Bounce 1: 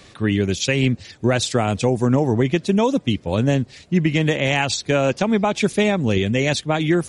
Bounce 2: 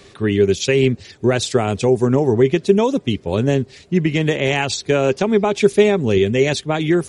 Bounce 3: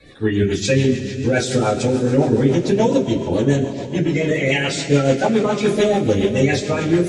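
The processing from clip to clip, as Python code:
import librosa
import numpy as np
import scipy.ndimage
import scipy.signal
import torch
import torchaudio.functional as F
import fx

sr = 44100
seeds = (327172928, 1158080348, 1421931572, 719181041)

y1 = fx.peak_eq(x, sr, hz=400.0, db=11.5, octaves=0.2)
y2 = fx.spec_quant(y1, sr, step_db=30)
y2 = fx.rev_double_slope(y2, sr, seeds[0], early_s=0.2, late_s=4.2, knee_db=-20, drr_db=-8.5)
y2 = fx.rotary(y2, sr, hz=7.0)
y2 = F.gain(torch.from_numpy(y2), -6.0).numpy()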